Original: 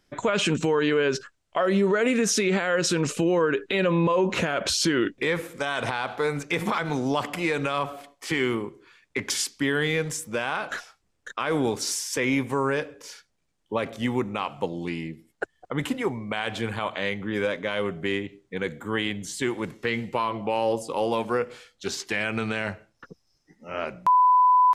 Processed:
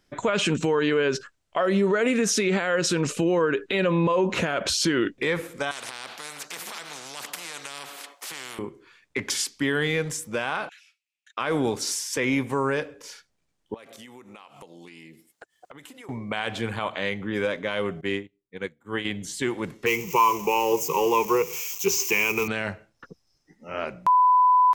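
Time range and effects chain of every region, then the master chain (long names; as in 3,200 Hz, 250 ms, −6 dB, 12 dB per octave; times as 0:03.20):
0:05.71–0:08.59: high-pass filter 1,000 Hz + high-shelf EQ 2,300 Hz −10.5 dB + every bin compressed towards the loudest bin 4 to 1
0:10.69–0:11.37: four-pole ladder high-pass 2,300 Hz, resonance 70% + downward compressor 2 to 1, threshold −51 dBFS
0:13.74–0:16.09: high-pass filter 400 Hz 6 dB per octave + high-shelf EQ 5,300 Hz +11.5 dB + downward compressor 20 to 1, threshold −41 dBFS
0:18.01–0:19.05: double-tracking delay 30 ms −14 dB + expander for the loud parts 2.5 to 1, over −41 dBFS
0:19.86–0:22.48: spike at every zero crossing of −27.5 dBFS + EQ curve with evenly spaced ripples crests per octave 0.76, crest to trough 18 dB
whole clip: no processing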